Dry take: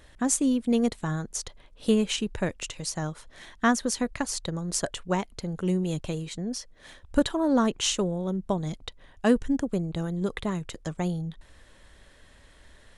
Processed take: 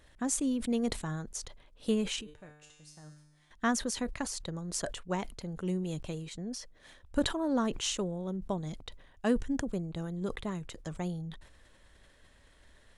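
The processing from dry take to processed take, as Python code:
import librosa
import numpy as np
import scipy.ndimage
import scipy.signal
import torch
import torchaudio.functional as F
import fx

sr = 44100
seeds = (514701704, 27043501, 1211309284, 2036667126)

y = fx.comb_fb(x, sr, f0_hz=150.0, decay_s=1.1, harmonics='all', damping=0.0, mix_pct=90, at=(2.21, 3.51))
y = fx.sustainer(y, sr, db_per_s=100.0)
y = F.gain(torch.from_numpy(y), -7.0).numpy()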